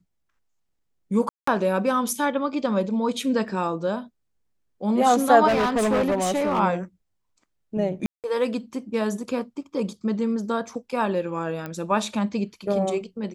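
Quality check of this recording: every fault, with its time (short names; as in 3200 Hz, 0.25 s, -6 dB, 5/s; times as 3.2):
1.29–1.47 gap 0.184 s
5.47–6.6 clipped -18 dBFS
8.06–8.24 gap 0.178 s
11.66 pop -19 dBFS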